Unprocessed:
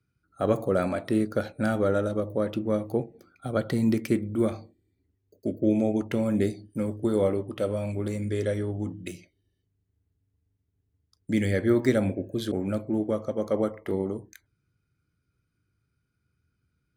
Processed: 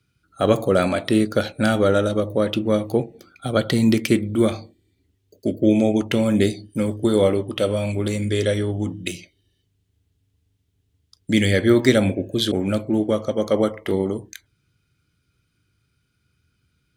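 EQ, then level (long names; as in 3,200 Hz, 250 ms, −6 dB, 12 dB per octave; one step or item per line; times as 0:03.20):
parametric band 3,200 Hz +8.5 dB 0.87 octaves
parametric band 7,400 Hz +5 dB 2 octaves
+6.5 dB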